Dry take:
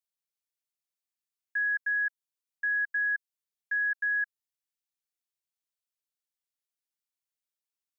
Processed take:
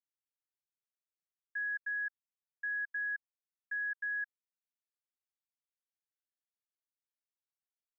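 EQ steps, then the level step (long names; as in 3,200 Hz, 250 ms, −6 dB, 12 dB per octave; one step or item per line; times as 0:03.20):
resonant band-pass 1,600 Hz, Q 3.3
first difference
+5.0 dB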